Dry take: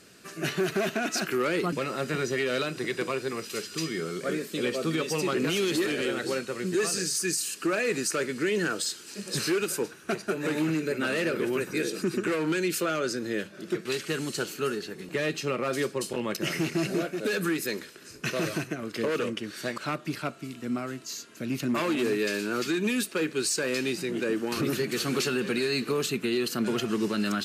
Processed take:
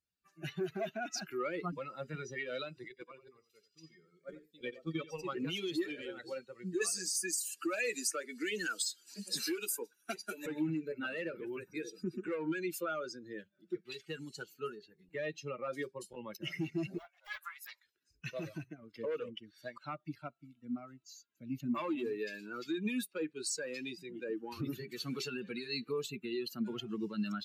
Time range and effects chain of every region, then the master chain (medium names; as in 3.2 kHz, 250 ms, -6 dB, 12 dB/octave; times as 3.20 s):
2.88–5.26 s: gate -29 dBFS, range -8 dB + delay 88 ms -8 dB
6.81–10.46 s: Chebyshev high-pass 200 Hz, order 3 + treble shelf 6.8 kHz +6.5 dB + three bands compressed up and down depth 70%
16.98–17.86 s: steep high-pass 650 Hz + loudspeaker Doppler distortion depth 0.23 ms
whole clip: expander on every frequency bin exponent 2; band-stop 400 Hz, Q 13; trim -4 dB